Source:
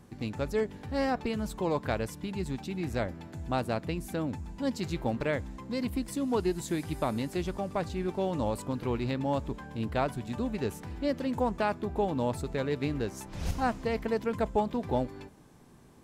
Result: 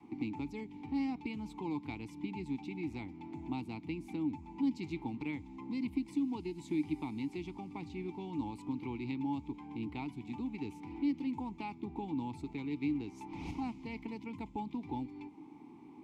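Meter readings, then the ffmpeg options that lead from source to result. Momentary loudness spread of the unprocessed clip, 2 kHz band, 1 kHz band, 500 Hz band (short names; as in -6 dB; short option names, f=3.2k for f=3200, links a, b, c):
6 LU, -10.0 dB, -11.0 dB, -16.0 dB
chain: -filter_complex "[0:a]acrossover=split=210|3000[a][b][c];[b]acompressor=threshold=-48dB:ratio=3[d];[a][d][c]amix=inputs=3:normalize=0,asplit=3[e][f][g];[e]bandpass=f=300:t=q:w=8,volume=0dB[h];[f]bandpass=f=870:t=q:w=8,volume=-6dB[i];[g]bandpass=f=2.24k:t=q:w=8,volume=-9dB[j];[h][i][j]amix=inputs=3:normalize=0,adynamicequalizer=threshold=0.001:dfrequency=230:dqfactor=0.97:tfrequency=230:tqfactor=0.97:attack=5:release=100:ratio=0.375:range=3:mode=cutabove:tftype=bell,volume=14.5dB"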